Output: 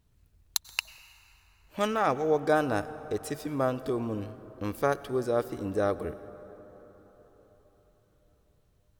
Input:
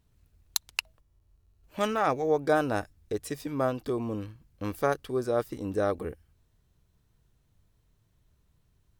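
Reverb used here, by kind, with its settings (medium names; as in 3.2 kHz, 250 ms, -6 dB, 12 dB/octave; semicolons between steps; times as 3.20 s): plate-style reverb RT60 4.6 s, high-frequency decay 0.45×, pre-delay 80 ms, DRR 15 dB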